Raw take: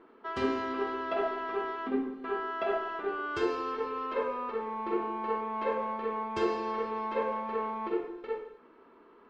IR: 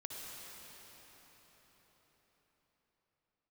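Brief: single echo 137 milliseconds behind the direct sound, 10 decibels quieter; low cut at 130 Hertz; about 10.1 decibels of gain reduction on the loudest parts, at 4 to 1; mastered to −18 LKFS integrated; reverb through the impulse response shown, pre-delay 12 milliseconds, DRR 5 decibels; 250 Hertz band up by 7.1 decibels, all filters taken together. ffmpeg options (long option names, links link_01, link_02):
-filter_complex "[0:a]highpass=130,equalizer=frequency=250:width_type=o:gain=9,acompressor=threshold=-31dB:ratio=4,aecho=1:1:137:0.316,asplit=2[link_01][link_02];[1:a]atrim=start_sample=2205,adelay=12[link_03];[link_02][link_03]afir=irnorm=-1:irlink=0,volume=-4dB[link_04];[link_01][link_04]amix=inputs=2:normalize=0,volume=15.5dB"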